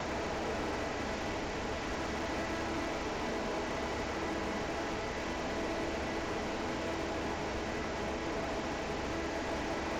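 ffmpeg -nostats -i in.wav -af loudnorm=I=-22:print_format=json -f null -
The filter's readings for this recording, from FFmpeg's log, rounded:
"input_i" : "-36.3",
"input_tp" : "-29.3",
"input_lra" : "0.4",
"input_thresh" : "-46.3",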